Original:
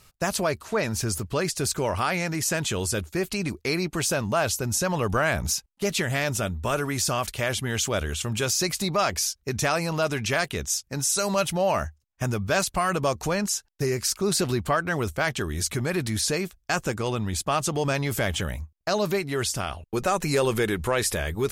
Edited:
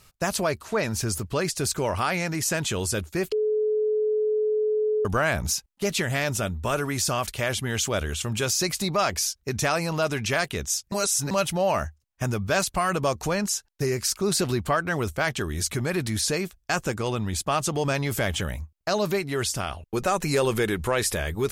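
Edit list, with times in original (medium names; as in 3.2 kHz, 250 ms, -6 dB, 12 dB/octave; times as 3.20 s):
3.32–5.05 s: bleep 428 Hz -20.5 dBFS
10.92–11.31 s: reverse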